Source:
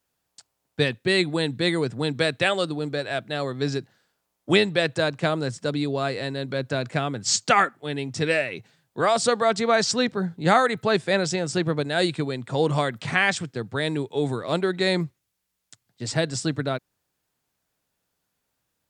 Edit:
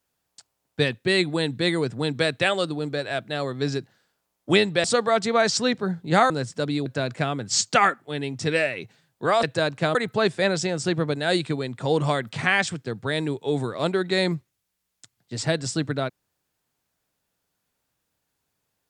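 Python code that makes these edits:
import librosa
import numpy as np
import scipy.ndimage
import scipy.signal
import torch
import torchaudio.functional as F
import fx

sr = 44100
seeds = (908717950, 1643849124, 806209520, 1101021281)

y = fx.edit(x, sr, fx.swap(start_s=4.84, length_s=0.52, other_s=9.18, other_length_s=1.46),
    fx.cut(start_s=5.92, length_s=0.69), tone=tone)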